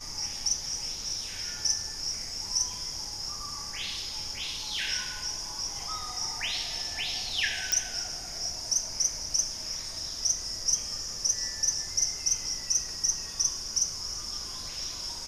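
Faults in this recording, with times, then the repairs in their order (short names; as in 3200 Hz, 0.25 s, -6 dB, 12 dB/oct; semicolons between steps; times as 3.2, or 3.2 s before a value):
7.72 pop -10 dBFS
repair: de-click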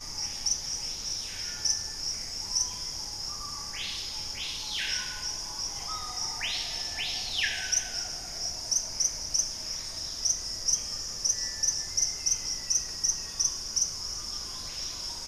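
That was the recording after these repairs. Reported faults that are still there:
none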